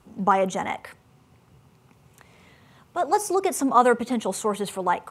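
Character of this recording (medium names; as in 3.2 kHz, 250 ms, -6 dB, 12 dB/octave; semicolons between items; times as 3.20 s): noise floor -58 dBFS; spectral tilt -4.5 dB/octave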